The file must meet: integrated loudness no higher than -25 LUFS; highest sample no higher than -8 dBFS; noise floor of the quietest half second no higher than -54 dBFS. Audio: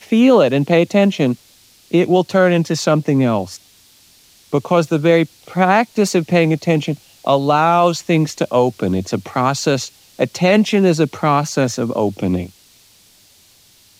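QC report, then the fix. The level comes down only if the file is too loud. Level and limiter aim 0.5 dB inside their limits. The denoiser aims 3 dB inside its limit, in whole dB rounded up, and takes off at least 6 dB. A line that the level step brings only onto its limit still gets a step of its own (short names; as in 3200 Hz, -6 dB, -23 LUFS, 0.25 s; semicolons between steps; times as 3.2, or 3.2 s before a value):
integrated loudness -16.0 LUFS: fail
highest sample -2.5 dBFS: fail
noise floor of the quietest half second -50 dBFS: fail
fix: gain -9.5 dB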